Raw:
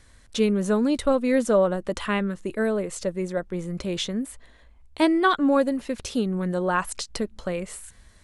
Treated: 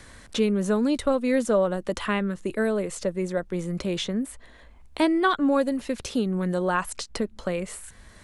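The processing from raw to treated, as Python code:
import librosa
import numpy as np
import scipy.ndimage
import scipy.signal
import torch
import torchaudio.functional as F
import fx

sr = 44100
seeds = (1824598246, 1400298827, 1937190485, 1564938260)

y = fx.band_squash(x, sr, depth_pct=40)
y = F.gain(torch.from_numpy(y), -1.0).numpy()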